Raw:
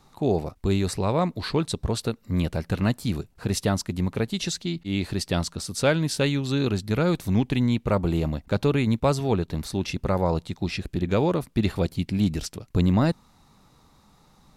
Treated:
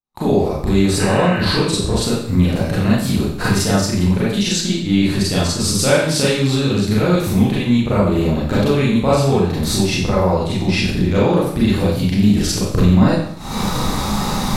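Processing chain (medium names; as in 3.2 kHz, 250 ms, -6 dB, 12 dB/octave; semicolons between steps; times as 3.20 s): recorder AGC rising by 71 dB/s; gate -40 dBFS, range -43 dB; Schroeder reverb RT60 0.64 s, combs from 30 ms, DRR -8 dB; spectral replace 1.03–1.51 s, 1.2–3 kHz after; trim -1 dB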